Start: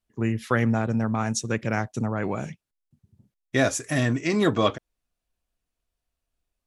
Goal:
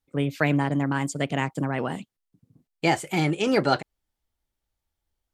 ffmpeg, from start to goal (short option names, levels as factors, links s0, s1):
-filter_complex "[0:a]acrossover=split=5800[s0][s1];[s1]acompressor=threshold=0.00251:ratio=4:attack=1:release=60[s2];[s0][s2]amix=inputs=2:normalize=0,asetrate=55125,aresample=44100"